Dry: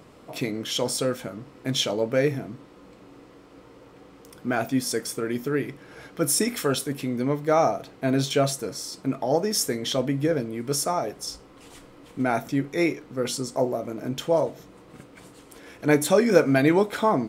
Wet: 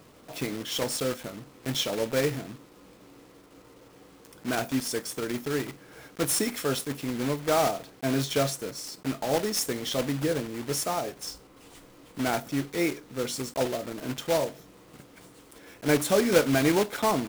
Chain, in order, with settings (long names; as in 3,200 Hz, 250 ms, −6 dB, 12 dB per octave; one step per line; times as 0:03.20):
one scale factor per block 3 bits
level −4 dB